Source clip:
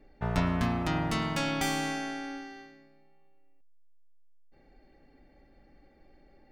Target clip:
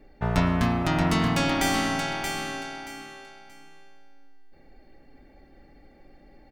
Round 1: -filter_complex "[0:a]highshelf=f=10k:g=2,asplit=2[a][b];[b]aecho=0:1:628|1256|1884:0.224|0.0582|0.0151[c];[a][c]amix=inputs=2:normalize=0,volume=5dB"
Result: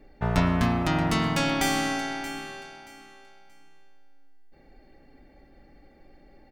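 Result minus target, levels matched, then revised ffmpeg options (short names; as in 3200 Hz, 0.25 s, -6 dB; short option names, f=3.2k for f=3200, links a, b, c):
echo-to-direct -8 dB
-filter_complex "[0:a]highshelf=f=10k:g=2,asplit=2[a][b];[b]aecho=0:1:628|1256|1884:0.562|0.146|0.038[c];[a][c]amix=inputs=2:normalize=0,volume=5dB"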